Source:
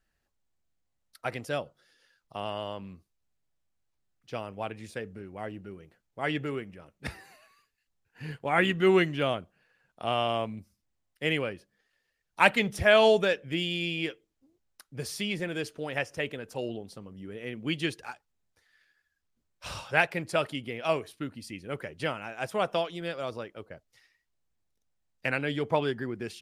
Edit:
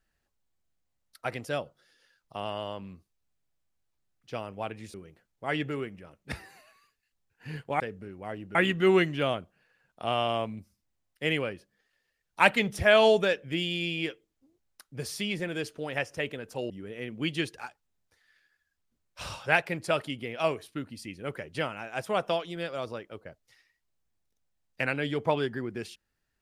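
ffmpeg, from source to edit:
ffmpeg -i in.wav -filter_complex "[0:a]asplit=5[link_01][link_02][link_03][link_04][link_05];[link_01]atrim=end=4.942[link_06];[link_02]atrim=start=5.688:end=8.552[link_07];[link_03]atrim=start=4.938:end=5.692[link_08];[link_04]atrim=start=8.548:end=16.702[link_09];[link_05]atrim=start=17.148[link_10];[link_06][link_07]acrossfade=duration=0.004:curve1=hsin:curve2=hsin[link_11];[link_11][link_08]acrossfade=duration=0.004:curve1=hsin:curve2=hsin[link_12];[link_12][link_09]acrossfade=duration=0.004:curve1=hsin:curve2=hsin[link_13];[link_13][link_10]acrossfade=duration=0.004:curve1=hsin:curve2=hsin" out.wav

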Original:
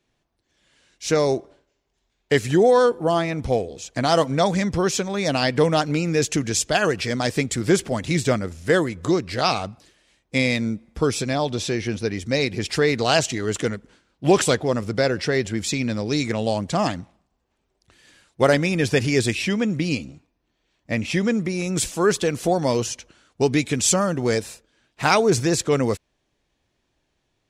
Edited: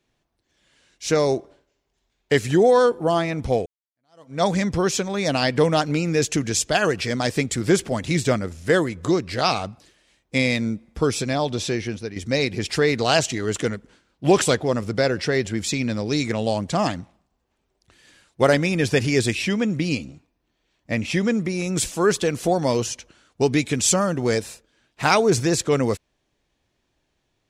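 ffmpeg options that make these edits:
ffmpeg -i in.wav -filter_complex "[0:a]asplit=3[link_01][link_02][link_03];[link_01]atrim=end=3.66,asetpts=PTS-STARTPTS,afade=type=out:start_time=3.656:duration=0.004:curve=hsin[link_04];[link_02]atrim=start=3.66:end=12.16,asetpts=PTS-STARTPTS,afade=type=in:duration=0.77:curve=exp,afade=type=out:start_time=8.08:duration=0.42:silence=0.316228[link_05];[link_03]atrim=start=12.16,asetpts=PTS-STARTPTS,afade=type=in:duration=0.004:curve=hsin:silence=0.316228[link_06];[link_04][link_05][link_06]concat=n=3:v=0:a=1" out.wav

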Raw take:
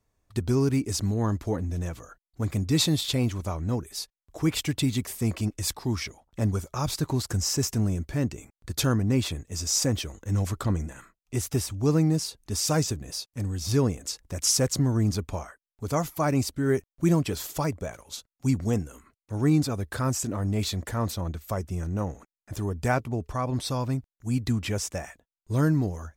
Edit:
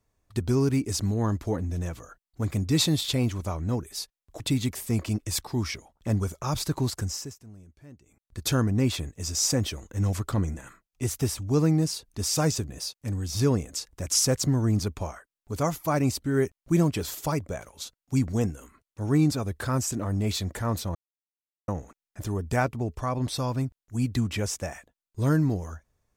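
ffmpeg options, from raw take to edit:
ffmpeg -i in.wav -filter_complex "[0:a]asplit=6[link_01][link_02][link_03][link_04][link_05][link_06];[link_01]atrim=end=4.402[link_07];[link_02]atrim=start=4.718:end=7.67,asetpts=PTS-STARTPTS,afade=type=out:start_time=2.492:duration=0.46:silence=0.0794328[link_08];[link_03]atrim=start=7.67:end=8.38,asetpts=PTS-STARTPTS,volume=-22dB[link_09];[link_04]atrim=start=8.38:end=21.27,asetpts=PTS-STARTPTS,afade=type=in:duration=0.46:silence=0.0794328,afade=type=out:start_time=12.886:duration=0.004:curve=hsin[link_10];[link_05]atrim=start=21.27:end=22,asetpts=PTS-STARTPTS,volume=0[link_11];[link_06]atrim=start=22,asetpts=PTS-STARTPTS,afade=type=in:duration=0.004:curve=hsin[link_12];[link_08][link_09][link_10][link_11][link_12]concat=n=5:v=0:a=1[link_13];[link_07][link_13]acrossfade=duration=0.004:curve1=hsin:curve2=hsin" out.wav

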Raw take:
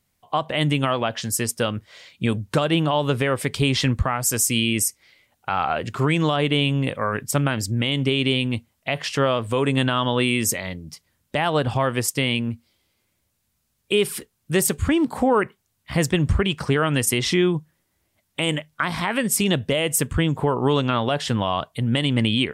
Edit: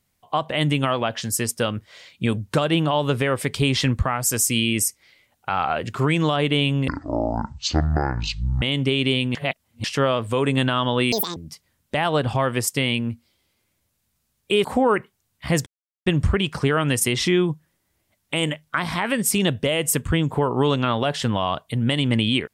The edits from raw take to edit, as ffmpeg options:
ffmpeg -i in.wav -filter_complex "[0:a]asplit=9[link_01][link_02][link_03][link_04][link_05][link_06][link_07][link_08][link_09];[link_01]atrim=end=6.884[link_10];[link_02]atrim=start=6.88:end=7.82,asetpts=PTS-STARTPTS,asetrate=23814,aresample=44100[link_11];[link_03]atrim=start=7.816:end=8.552[link_12];[link_04]atrim=start=8.548:end=9.042,asetpts=PTS-STARTPTS,areverse[link_13];[link_05]atrim=start=9.038:end=10.324[link_14];[link_06]atrim=start=10.32:end=10.77,asetpts=PTS-STARTPTS,asetrate=82026,aresample=44100,atrim=end_sample=10669,asetpts=PTS-STARTPTS[link_15];[link_07]atrim=start=10.766:end=14.052[link_16];[link_08]atrim=start=15.098:end=16.12,asetpts=PTS-STARTPTS,afade=type=out:start_time=1.018:duration=0.004:curve=hsin,apad=pad_dur=0.4[link_17];[link_09]atrim=start=16.12,asetpts=PTS-STARTPTS,afade=type=in:duration=0.004:curve=hsin[link_18];[link_10][link_11]acrossfade=duration=0.004:curve1=hsin:curve2=hsin[link_19];[link_19][link_12]acrossfade=duration=0.004:curve1=hsin:curve2=hsin[link_20];[link_20][link_13]acrossfade=duration=0.004:curve1=hsin:curve2=hsin[link_21];[link_21][link_14]acrossfade=duration=0.004:curve1=hsin:curve2=hsin[link_22];[link_22][link_15]acrossfade=duration=0.004:curve1=hsin:curve2=hsin[link_23];[link_23][link_16]acrossfade=duration=0.004:curve1=hsin:curve2=hsin[link_24];[link_17][link_18]concat=n=2:v=0:a=1[link_25];[link_24][link_25]acrossfade=duration=0.004:curve1=hsin:curve2=hsin" out.wav

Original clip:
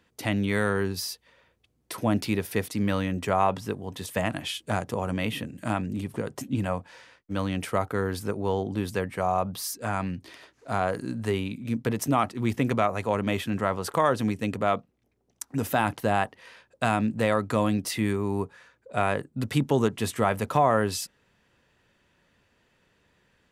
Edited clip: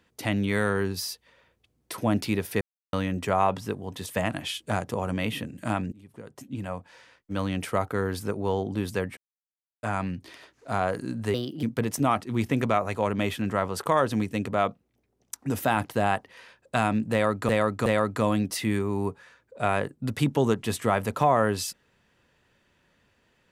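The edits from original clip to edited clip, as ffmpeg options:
ffmpeg -i in.wav -filter_complex "[0:a]asplit=10[link_01][link_02][link_03][link_04][link_05][link_06][link_07][link_08][link_09][link_10];[link_01]atrim=end=2.61,asetpts=PTS-STARTPTS,afade=type=out:start_time=2.606:duration=0.004:curve=hsin[link_11];[link_02]atrim=start=2.61:end=2.93,asetpts=PTS-STARTPTS,volume=0[link_12];[link_03]atrim=start=2.93:end=5.92,asetpts=PTS-STARTPTS,afade=type=in:duration=0.004:curve=hsin,afade=type=out:start_time=2.986:duration=0.004:curve=hsin:silence=0.0630957[link_13];[link_04]atrim=start=5.92:end=9.17,asetpts=PTS-STARTPTS,afade=type=in:duration=1.53:silence=0.0630957,afade=type=out:start_time=3.246:duration=0.004:curve=hsin[link_14];[link_05]atrim=start=9.17:end=9.83,asetpts=PTS-STARTPTS,volume=0[link_15];[link_06]atrim=start=9.83:end=11.344,asetpts=PTS-STARTPTS,afade=type=in:duration=0.004:curve=hsin[link_16];[link_07]atrim=start=11.34:end=11.71,asetpts=PTS-STARTPTS,asetrate=56448,aresample=44100[link_17];[link_08]atrim=start=11.706:end=17.572[link_18];[link_09]atrim=start=17.198:end=17.572[link_19];[link_10]atrim=start=17.198[link_20];[link_11][link_12][link_13][link_14][link_15][link_16]concat=n=6:v=0:a=1[link_21];[link_21][link_17]acrossfade=duration=0.004:curve1=hsin:curve2=hsin[link_22];[link_22][link_18]acrossfade=duration=0.004:curve1=hsin:curve2=hsin[link_23];[link_23][link_19]acrossfade=duration=0.004:curve1=hsin:curve2=hsin[link_24];[link_24][link_20]acrossfade=duration=0.004:curve1=hsin:curve2=hsin" out.wav

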